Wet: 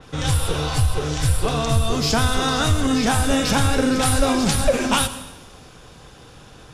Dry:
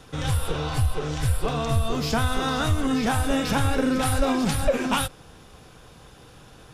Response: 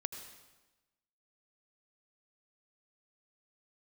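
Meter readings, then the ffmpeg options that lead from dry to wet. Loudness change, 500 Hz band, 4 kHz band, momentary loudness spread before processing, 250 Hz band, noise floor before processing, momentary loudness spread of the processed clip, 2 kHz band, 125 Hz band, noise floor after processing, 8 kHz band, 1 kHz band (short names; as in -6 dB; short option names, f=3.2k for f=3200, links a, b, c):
+4.5 dB, +4.0 dB, +7.0 dB, 4 LU, +3.5 dB, -49 dBFS, 4 LU, +4.5 dB, +4.0 dB, -45 dBFS, +8.5 dB, +4.0 dB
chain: -filter_complex "[0:a]asplit=2[a][b];[1:a]atrim=start_sample=2205,lowpass=8.9k,highshelf=f=6k:g=6.5[c];[b][c]afir=irnorm=-1:irlink=0,volume=-0.5dB[d];[a][d]amix=inputs=2:normalize=0,adynamicequalizer=threshold=0.0141:dfrequency=3900:dqfactor=0.7:tfrequency=3900:tqfactor=0.7:attack=5:release=100:ratio=0.375:range=3:mode=boostabove:tftype=highshelf,volume=-1.5dB"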